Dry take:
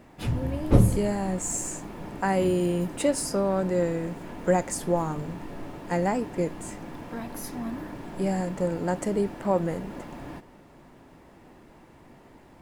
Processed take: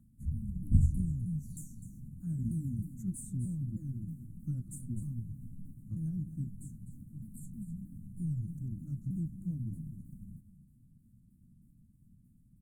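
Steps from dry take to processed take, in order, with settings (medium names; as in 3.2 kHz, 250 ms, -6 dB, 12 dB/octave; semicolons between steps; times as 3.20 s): sawtooth pitch modulation -9.5 st, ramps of 314 ms; inverse Chebyshev band-stop 400–5400 Hz, stop band 40 dB; wow and flutter 22 cents; delay 252 ms -12 dB; trim -5 dB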